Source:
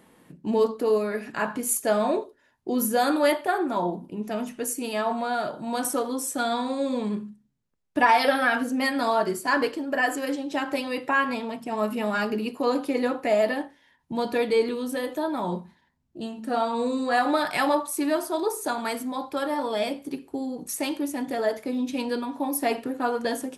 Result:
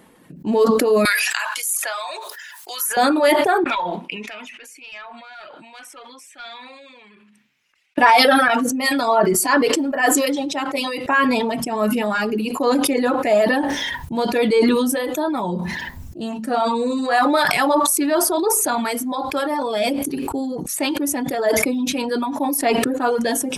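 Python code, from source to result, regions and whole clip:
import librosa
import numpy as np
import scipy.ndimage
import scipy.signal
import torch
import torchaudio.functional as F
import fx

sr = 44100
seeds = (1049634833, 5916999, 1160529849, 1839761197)

y = fx.chain(x, sr, fx.bessel_highpass(hz=1400.0, order=4),
    fx.band_squash(depth_pct=70), at=(1.05, 2.97))
y = fx.chain(y, sr, fx.bandpass_q(hz=2400.0, q=3.4),
    fx.tube_stage(drive_db=28.0, bias=0.35), at=(3.64, 7.98))
y = fx.chain(y, sr, fx.low_shelf(hz=340.0, db=-3.0),
    fx.notch(hz=1600.0, q=10.0),
    fx.band_widen(depth_pct=100), at=(8.48, 11.06))
y = fx.dereverb_blind(y, sr, rt60_s=0.78)
y = fx.sustainer(y, sr, db_per_s=23.0)
y = y * librosa.db_to_amplitude(5.5)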